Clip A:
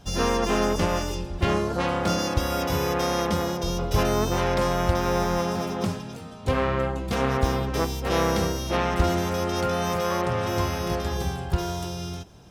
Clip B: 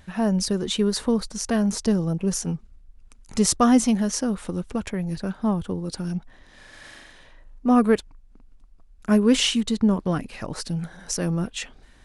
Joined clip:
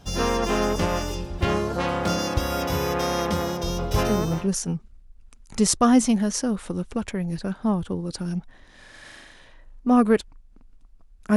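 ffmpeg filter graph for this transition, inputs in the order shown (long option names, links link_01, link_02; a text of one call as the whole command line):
ffmpeg -i cue0.wav -i cue1.wav -filter_complex "[0:a]apad=whole_dur=11.36,atrim=end=11.36,atrim=end=4.5,asetpts=PTS-STARTPTS[link_01];[1:a]atrim=start=1.69:end=9.15,asetpts=PTS-STARTPTS[link_02];[link_01][link_02]acrossfade=duration=0.6:curve1=qsin:curve2=qsin" out.wav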